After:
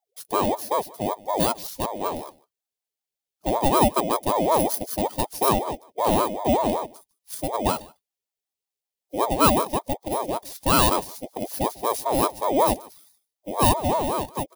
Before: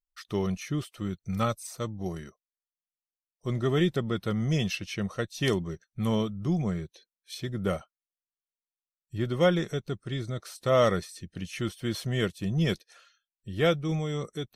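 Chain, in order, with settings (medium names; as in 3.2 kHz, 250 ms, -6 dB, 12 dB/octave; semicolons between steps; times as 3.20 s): bit-reversed sample order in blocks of 16 samples; high-order bell 1.1 kHz -15 dB; delay 150 ms -22.5 dB; ring modulator with a swept carrier 610 Hz, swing 35%, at 5.3 Hz; trim +9 dB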